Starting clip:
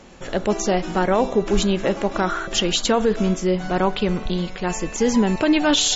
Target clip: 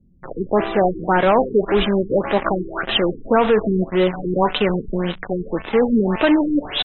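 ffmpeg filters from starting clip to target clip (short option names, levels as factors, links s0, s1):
-filter_complex "[0:a]atempo=0.87,asplit=2[s0][s1];[s1]highpass=f=720:p=1,volume=5.01,asoftclip=type=tanh:threshold=0.422[s2];[s0][s2]amix=inputs=2:normalize=0,lowpass=f=3400:p=1,volume=0.501,acrossover=split=180[s3][s4];[s4]acrusher=bits=3:mix=0:aa=0.5[s5];[s3][s5]amix=inputs=2:normalize=0,afftfilt=real='re*lt(b*sr/1024,450*pow(4100/450,0.5+0.5*sin(2*PI*1.8*pts/sr)))':imag='im*lt(b*sr/1024,450*pow(4100/450,0.5+0.5*sin(2*PI*1.8*pts/sr)))':win_size=1024:overlap=0.75,volume=1.19"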